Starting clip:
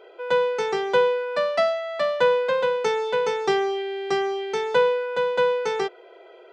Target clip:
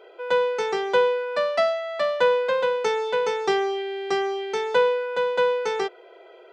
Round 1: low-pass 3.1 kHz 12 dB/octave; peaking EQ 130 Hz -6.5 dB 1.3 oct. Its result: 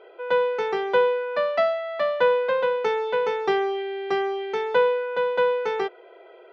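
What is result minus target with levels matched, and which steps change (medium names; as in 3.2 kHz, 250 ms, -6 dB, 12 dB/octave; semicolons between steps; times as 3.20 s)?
4 kHz band -3.5 dB
remove: low-pass 3.1 kHz 12 dB/octave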